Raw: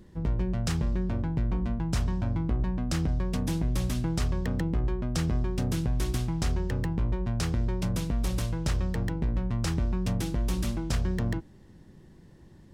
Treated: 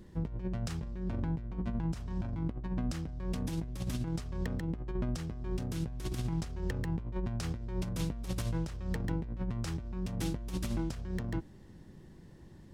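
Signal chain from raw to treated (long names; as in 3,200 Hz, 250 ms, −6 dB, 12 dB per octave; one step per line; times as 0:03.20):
compressor whose output falls as the input rises −30 dBFS, ratio −0.5
level −4 dB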